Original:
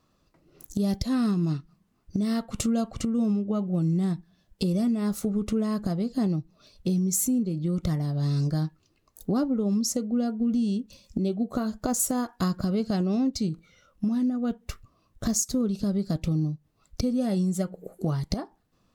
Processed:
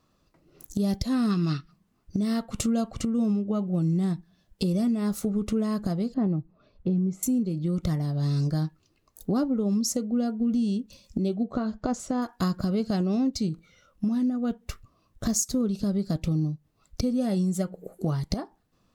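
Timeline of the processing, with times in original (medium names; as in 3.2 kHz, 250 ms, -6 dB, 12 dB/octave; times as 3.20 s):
1.31–1.71 s: time-frequency box 1.1–5.9 kHz +10 dB
6.14–7.23 s: low-pass 1.6 kHz
11.43–12.22 s: distance through air 140 m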